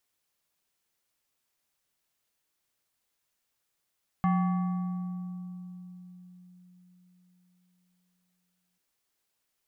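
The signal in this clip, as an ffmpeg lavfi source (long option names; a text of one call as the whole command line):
ffmpeg -f lavfi -i "aevalsrc='0.0891*pow(10,-3*t/4.54)*sin(2*PI*180*t+0.75*pow(10,-3*t/4)*sin(2*PI*5.31*180*t))':duration=4.54:sample_rate=44100" out.wav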